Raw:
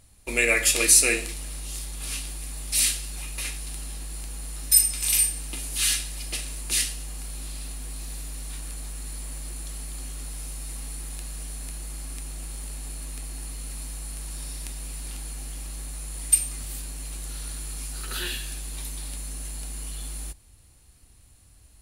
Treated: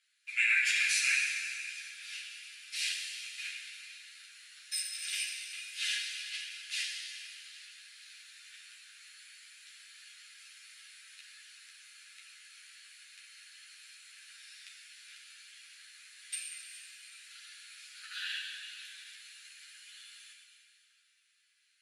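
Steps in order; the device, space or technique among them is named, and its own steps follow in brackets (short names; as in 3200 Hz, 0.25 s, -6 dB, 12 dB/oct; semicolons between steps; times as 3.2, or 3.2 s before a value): Chebyshev high-pass 1500 Hz, order 5; Schroeder reverb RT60 2.5 s, combs from 28 ms, DRR 1 dB; string-machine ensemble chorus (ensemble effect; LPF 4000 Hz 12 dB/oct); gain -1.5 dB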